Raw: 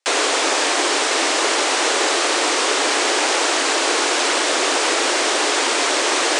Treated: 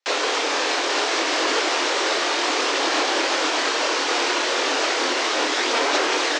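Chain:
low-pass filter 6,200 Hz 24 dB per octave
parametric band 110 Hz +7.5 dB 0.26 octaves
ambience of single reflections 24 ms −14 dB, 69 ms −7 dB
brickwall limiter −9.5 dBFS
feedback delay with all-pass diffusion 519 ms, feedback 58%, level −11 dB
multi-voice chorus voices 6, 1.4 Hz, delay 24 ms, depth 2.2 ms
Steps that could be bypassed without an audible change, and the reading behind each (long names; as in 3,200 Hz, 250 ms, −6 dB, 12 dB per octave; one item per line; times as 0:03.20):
parametric band 110 Hz: nothing at its input below 210 Hz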